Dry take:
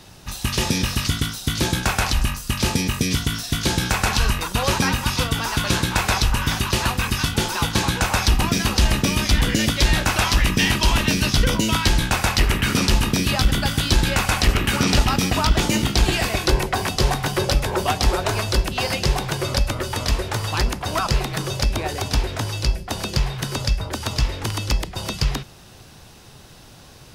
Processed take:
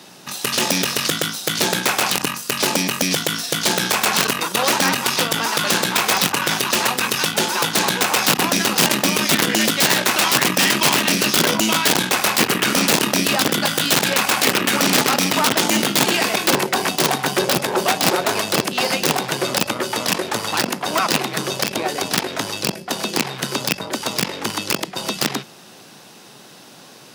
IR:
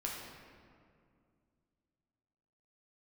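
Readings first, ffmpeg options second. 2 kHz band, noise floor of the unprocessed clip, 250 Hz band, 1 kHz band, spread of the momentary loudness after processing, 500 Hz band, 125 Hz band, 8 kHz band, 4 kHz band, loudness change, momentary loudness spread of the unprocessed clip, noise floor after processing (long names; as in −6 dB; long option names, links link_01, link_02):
+4.5 dB, −45 dBFS, +1.5 dB, +4.0 dB, 7 LU, +4.5 dB, −8.5 dB, +6.5 dB, +4.5 dB, +3.0 dB, 6 LU, −44 dBFS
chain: -af "aeval=exprs='(mod(3.55*val(0)+1,2)-1)/3.55':channel_layout=same,aeval=exprs='(tanh(7.94*val(0)+0.7)-tanh(0.7))/7.94':channel_layout=same,highpass=frequency=180:width=0.5412,highpass=frequency=180:width=1.3066,volume=8dB"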